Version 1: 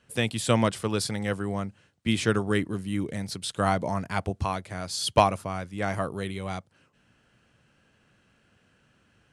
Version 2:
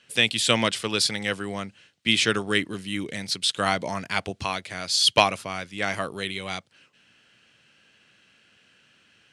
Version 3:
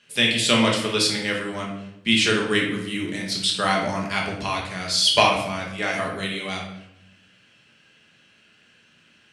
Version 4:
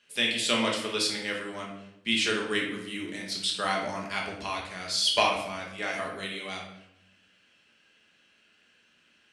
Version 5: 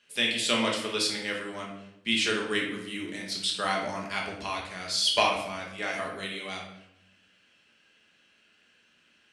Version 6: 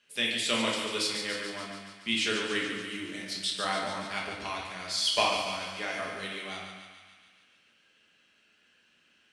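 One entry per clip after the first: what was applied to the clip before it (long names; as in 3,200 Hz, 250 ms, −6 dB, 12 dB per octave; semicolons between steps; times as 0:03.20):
meter weighting curve D
rectangular room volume 230 cubic metres, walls mixed, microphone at 1.3 metres; level −1.5 dB
parametric band 130 Hz −11.5 dB 0.92 octaves; level −6.5 dB
no processing that can be heard
feedback echo with a high-pass in the loop 143 ms, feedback 66%, high-pass 560 Hz, level −7 dB; harmonic generator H 4 −34 dB, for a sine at −7 dBFS; level −3 dB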